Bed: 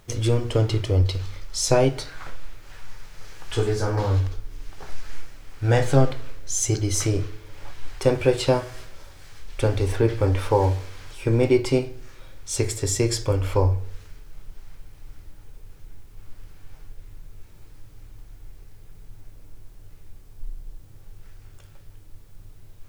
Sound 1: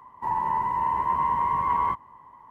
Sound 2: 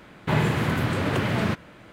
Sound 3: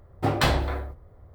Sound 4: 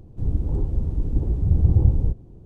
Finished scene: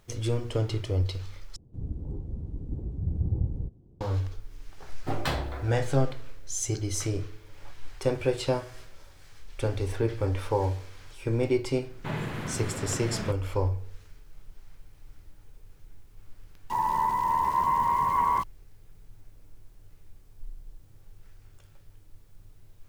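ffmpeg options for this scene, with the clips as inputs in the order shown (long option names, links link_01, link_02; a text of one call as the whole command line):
ffmpeg -i bed.wav -i cue0.wav -i cue1.wav -i cue2.wav -i cue3.wav -filter_complex "[0:a]volume=-7dB[link_01];[4:a]equalizer=frequency=190:width=0.33:gain=7[link_02];[1:a]aeval=exprs='val(0)*gte(abs(val(0)),0.0119)':channel_layout=same[link_03];[link_01]asplit=2[link_04][link_05];[link_04]atrim=end=1.564[link_06];[link_02]atrim=end=2.45,asetpts=PTS-STARTPTS,volume=-16dB[link_07];[link_05]atrim=start=4.006[link_08];[3:a]atrim=end=1.34,asetpts=PTS-STARTPTS,volume=-7.5dB,afade=type=in:duration=0.004:curve=hsin,afade=type=out:start_time=1.336:duration=0.004:curve=hsin,adelay=4840[link_09];[2:a]atrim=end=1.92,asetpts=PTS-STARTPTS,volume=-10.5dB,afade=type=in:duration=0.004:curve=hsin,afade=type=out:start_time=1.916:duration=0.004:curve=hsin,adelay=11770[link_10];[link_03]atrim=end=2.5,asetpts=PTS-STARTPTS,volume=-0.5dB,afade=type=in:duration=0.004:curve=hsin,afade=type=out:start_time=2.496:duration=0.004:curve=hsin,adelay=16480[link_11];[link_06][link_07]acrossfade=duration=0.004:curve1=hsin:curve2=hsin[link_12];[link_12][link_08]acrossfade=duration=0.004:curve1=hsin:curve2=hsin[link_13];[link_13][link_09][link_10][link_11]amix=inputs=4:normalize=0" out.wav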